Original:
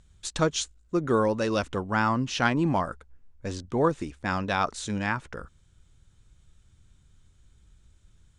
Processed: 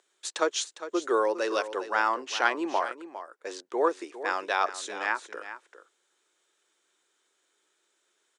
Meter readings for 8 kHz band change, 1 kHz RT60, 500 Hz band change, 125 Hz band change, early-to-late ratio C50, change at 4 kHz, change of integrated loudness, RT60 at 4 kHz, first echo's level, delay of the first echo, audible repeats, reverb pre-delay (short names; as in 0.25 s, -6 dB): -0.5 dB, none, -0.5 dB, under -35 dB, none, -0.5 dB, -1.5 dB, none, -12.5 dB, 0.405 s, 1, none